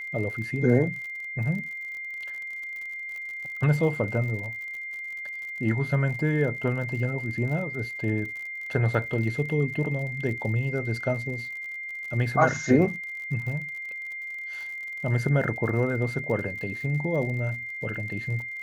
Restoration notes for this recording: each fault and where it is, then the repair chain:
crackle 58/s -36 dBFS
tone 2100 Hz -33 dBFS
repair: de-click; notch 2100 Hz, Q 30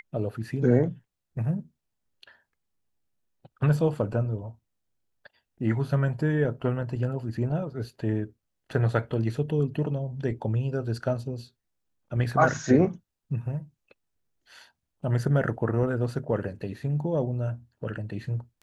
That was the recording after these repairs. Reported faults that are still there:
none

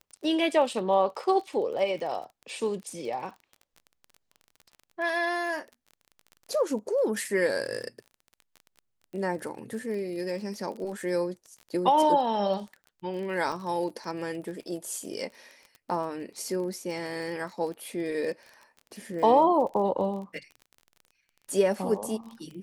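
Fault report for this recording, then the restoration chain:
crackle 27/s -37 dBFS
13.52 gap 4.1 ms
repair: de-click; interpolate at 13.52, 4.1 ms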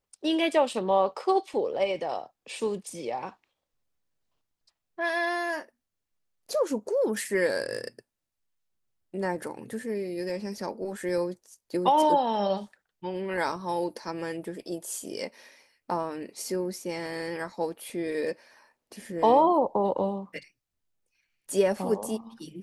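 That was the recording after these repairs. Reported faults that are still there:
none

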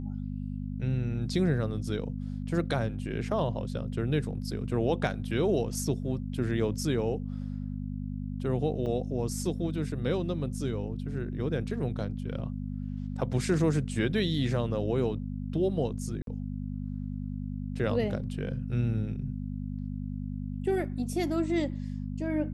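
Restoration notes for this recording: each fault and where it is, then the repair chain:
hum 50 Hz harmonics 5 -35 dBFS
8.86 gap 4.6 ms
16.22–16.27 gap 52 ms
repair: de-hum 50 Hz, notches 5; interpolate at 8.86, 4.6 ms; interpolate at 16.22, 52 ms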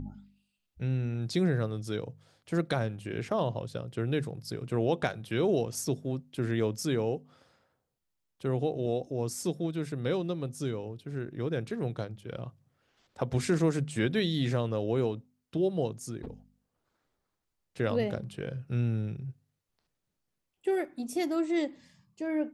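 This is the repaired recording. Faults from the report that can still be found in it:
none

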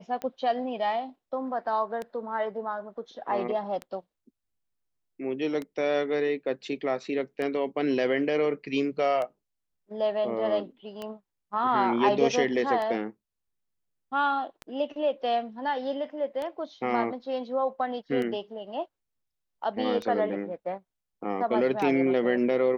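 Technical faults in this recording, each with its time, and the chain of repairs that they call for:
tick 33 1/3 rpm -21 dBFS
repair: de-click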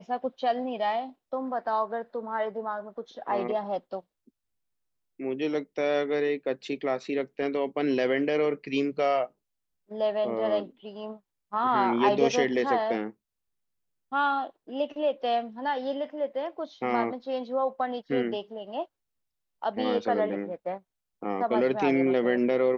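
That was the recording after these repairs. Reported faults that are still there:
none

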